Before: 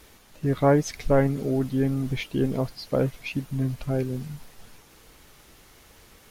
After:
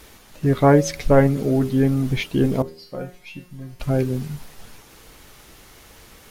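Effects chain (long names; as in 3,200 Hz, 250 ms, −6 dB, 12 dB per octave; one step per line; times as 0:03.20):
0:02.62–0:03.80: tuned comb filter 180 Hz, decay 0.35 s, harmonics all, mix 90%
hum removal 79.83 Hz, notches 7
level +6 dB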